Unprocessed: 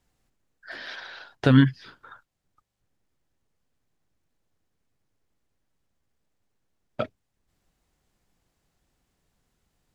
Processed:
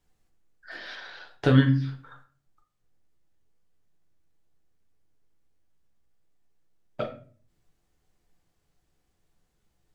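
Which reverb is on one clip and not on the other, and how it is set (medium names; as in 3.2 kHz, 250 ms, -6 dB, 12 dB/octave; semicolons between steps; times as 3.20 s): simulated room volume 35 m³, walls mixed, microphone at 0.45 m; trim -4 dB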